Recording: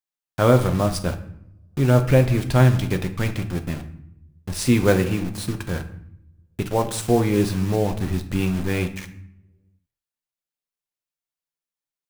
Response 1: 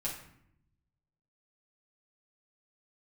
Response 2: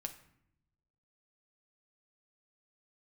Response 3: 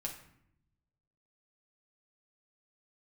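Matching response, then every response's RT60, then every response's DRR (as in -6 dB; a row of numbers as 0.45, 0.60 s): 2; 0.70, 0.75, 0.70 s; -6.0, 5.5, -0.5 dB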